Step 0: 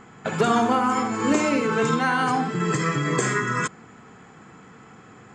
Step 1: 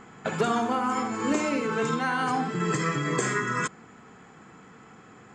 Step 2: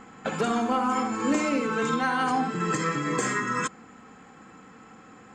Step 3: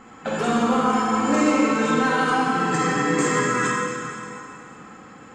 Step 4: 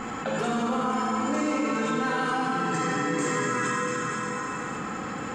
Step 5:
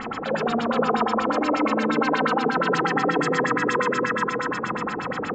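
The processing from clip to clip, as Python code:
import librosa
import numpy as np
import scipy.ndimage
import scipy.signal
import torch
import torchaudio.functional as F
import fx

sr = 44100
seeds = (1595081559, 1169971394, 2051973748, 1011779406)

y1 = fx.peak_eq(x, sr, hz=110.0, db=-3.5, octaves=0.77)
y1 = fx.rider(y1, sr, range_db=5, speed_s=0.5)
y1 = F.gain(torch.from_numpy(y1), -4.0).numpy()
y2 = y1 + 0.41 * np.pad(y1, (int(3.8 * sr / 1000.0), 0))[:len(y1)]
y2 = 10.0 ** (-13.0 / 20.0) * np.tanh(y2 / 10.0 ** (-13.0 / 20.0))
y3 = fx.rev_plate(y2, sr, seeds[0], rt60_s=2.8, hf_ratio=0.85, predelay_ms=0, drr_db=-4.5)
y4 = fx.env_flatten(y3, sr, amount_pct=70)
y4 = F.gain(torch.from_numpy(y4), -9.0).numpy()
y5 = fx.filter_lfo_lowpass(y4, sr, shape='sine', hz=8.4, low_hz=390.0, high_hz=5300.0, q=3.8)
y5 = y5 + 10.0 ** (-3.5 / 20.0) * np.pad(y5, (int(478 * sr / 1000.0), 0))[:len(y5)]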